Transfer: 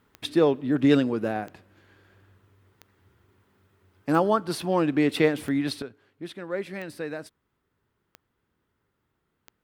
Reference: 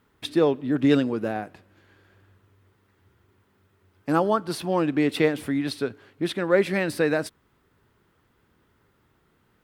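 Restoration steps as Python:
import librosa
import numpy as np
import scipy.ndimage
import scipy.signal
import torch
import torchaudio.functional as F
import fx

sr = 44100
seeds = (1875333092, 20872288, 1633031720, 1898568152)

y = fx.fix_declick_ar(x, sr, threshold=10.0)
y = fx.fix_level(y, sr, at_s=5.82, step_db=11.0)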